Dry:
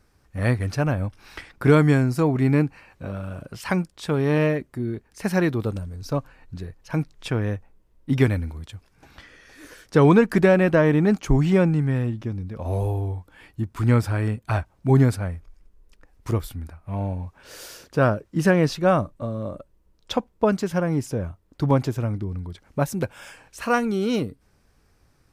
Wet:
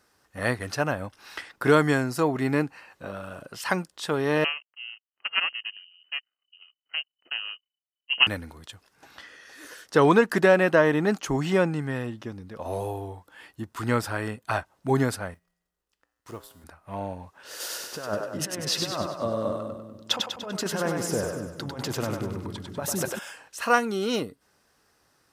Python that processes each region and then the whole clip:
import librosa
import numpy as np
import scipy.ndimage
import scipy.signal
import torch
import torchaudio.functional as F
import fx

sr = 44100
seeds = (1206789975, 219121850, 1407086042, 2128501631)

y = fx.chain(x, sr, fx.power_curve(exponent=2.0),
    fx.freq_invert(carrier_hz=3000), at=(4.44, 8.27))
y = fx.chain(y, sr, fx.law_mismatch(coded='A'),
    fx.comb_fb(f0_hz=58.0, decay_s=1.2, harmonics='odd', damping=0.0, mix_pct=70), at=(15.34, 16.64))
y = fx.chain(y, sr, fx.over_compress(threshold_db=-24.0, ratio=-0.5),
    fx.echo_split(split_hz=340.0, low_ms=230, high_ms=98, feedback_pct=52, wet_db=-4.0), at=(17.6, 23.19))
y = fx.highpass(y, sr, hz=630.0, slope=6)
y = fx.notch(y, sr, hz=2300.0, q=9.0)
y = y * librosa.db_to_amplitude(3.0)